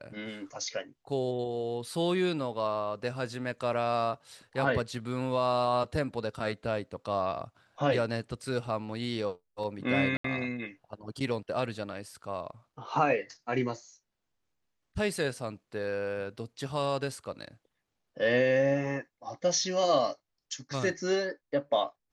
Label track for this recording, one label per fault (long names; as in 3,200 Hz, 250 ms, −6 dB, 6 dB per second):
10.170000	10.240000	drop-out 74 ms